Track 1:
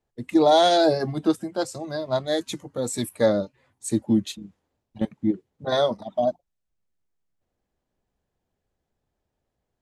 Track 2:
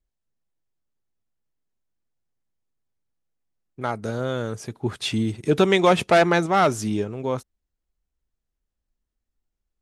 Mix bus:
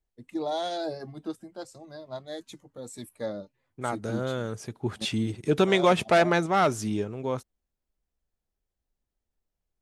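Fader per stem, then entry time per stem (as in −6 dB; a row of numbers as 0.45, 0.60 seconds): −13.5, −4.0 decibels; 0.00, 0.00 seconds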